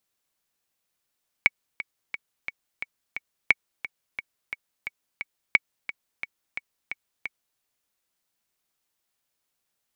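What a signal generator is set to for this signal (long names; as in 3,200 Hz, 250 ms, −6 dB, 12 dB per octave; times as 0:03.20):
click track 176 BPM, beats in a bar 6, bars 3, 2,240 Hz, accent 15 dB −3 dBFS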